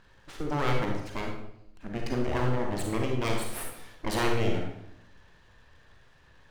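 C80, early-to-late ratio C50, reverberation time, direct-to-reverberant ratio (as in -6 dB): 6.5 dB, 3.0 dB, 0.80 s, 1.0 dB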